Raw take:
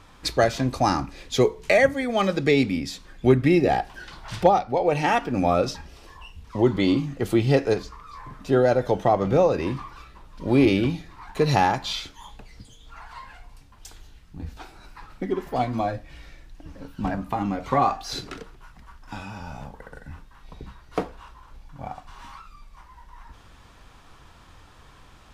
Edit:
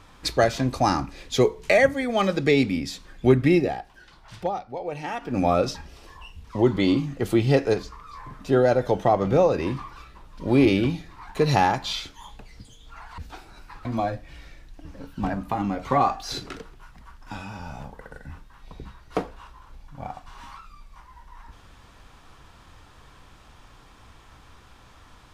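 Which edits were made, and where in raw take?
3.56–5.37 s: dip -10 dB, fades 0.18 s
13.18–14.45 s: delete
15.12–15.66 s: delete

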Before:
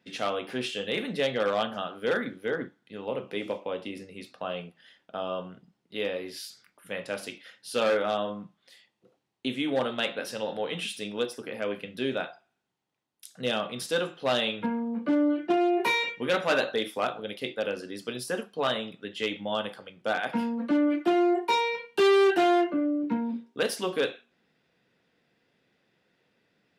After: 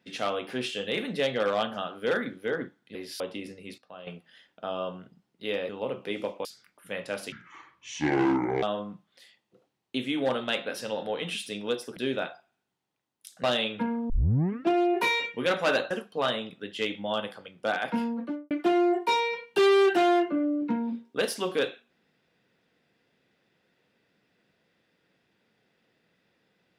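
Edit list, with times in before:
2.95–3.71 s: swap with 6.20–6.45 s
4.29–4.58 s: gain -11.5 dB
7.32–8.13 s: speed 62%
11.47–11.95 s: delete
13.42–14.27 s: delete
14.93 s: tape start 0.59 s
16.74–18.32 s: delete
20.48–20.92 s: studio fade out

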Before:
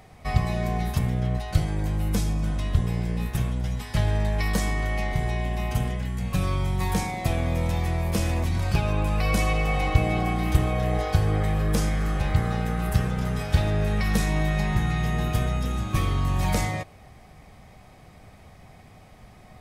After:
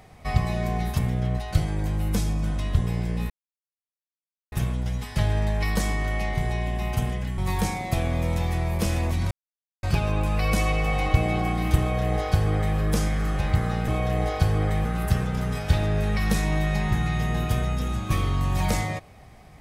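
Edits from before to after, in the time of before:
3.30 s: insert silence 1.22 s
6.16–6.71 s: delete
8.64 s: insert silence 0.52 s
10.61–11.58 s: copy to 12.69 s

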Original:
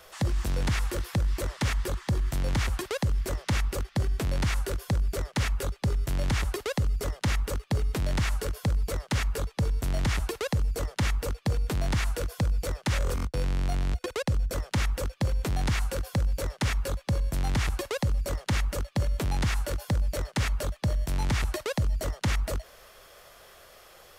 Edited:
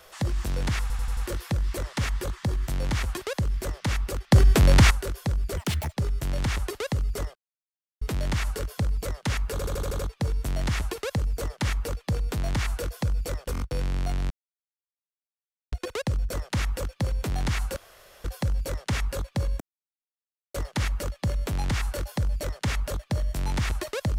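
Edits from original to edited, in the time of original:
0.81 s: stutter 0.09 s, 5 plays
3.96–4.55 s: gain +11 dB
5.21–5.80 s: speed 158%
7.21–7.87 s: mute
9.37 s: stutter 0.08 s, 7 plays
12.85–13.10 s: delete
13.93 s: insert silence 1.42 s
15.97 s: insert room tone 0.48 s
17.33–18.27 s: mute

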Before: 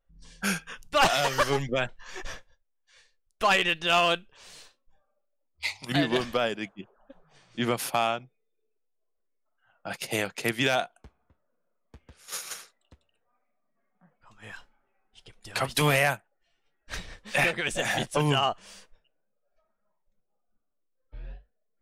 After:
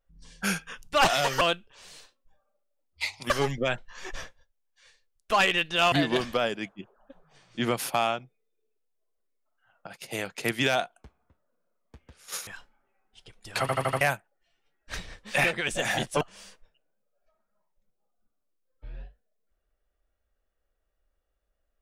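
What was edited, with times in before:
4.03–5.92 s: move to 1.41 s
9.87–10.52 s: fade in, from -12.5 dB
12.47–14.47 s: delete
15.61 s: stutter in place 0.08 s, 5 plays
18.21–18.51 s: delete

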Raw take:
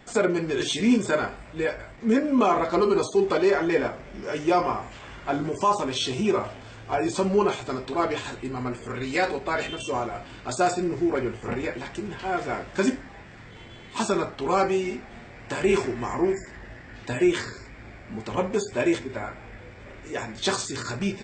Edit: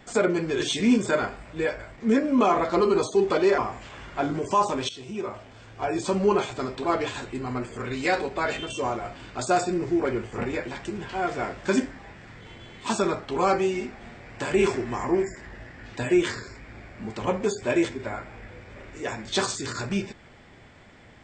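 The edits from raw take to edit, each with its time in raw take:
3.58–4.68 s: delete
5.99–7.38 s: fade in, from -15 dB

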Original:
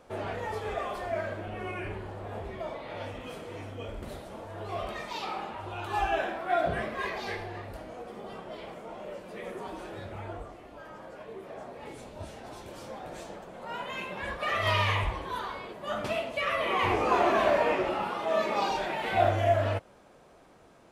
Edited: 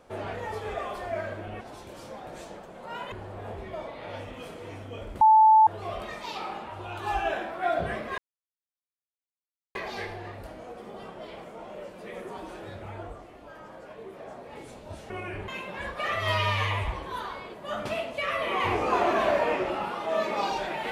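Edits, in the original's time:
1.61–1.99 s: swap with 12.40–13.91 s
4.08–4.54 s: bleep 874 Hz -13 dBFS
7.05 s: insert silence 1.57 s
14.59–15.07 s: stretch 1.5×

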